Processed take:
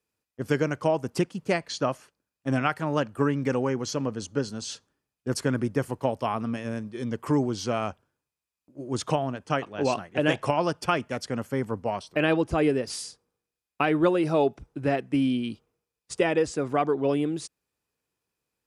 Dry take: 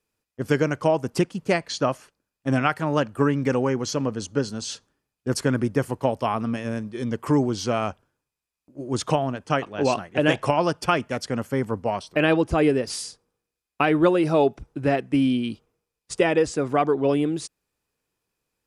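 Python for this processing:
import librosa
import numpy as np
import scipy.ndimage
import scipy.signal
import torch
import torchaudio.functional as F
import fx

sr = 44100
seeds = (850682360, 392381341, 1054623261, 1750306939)

y = scipy.signal.sosfilt(scipy.signal.butter(2, 46.0, 'highpass', fs=sr, output='sos'), x)
y = y * librosa.db_to_amplitude(-3.5)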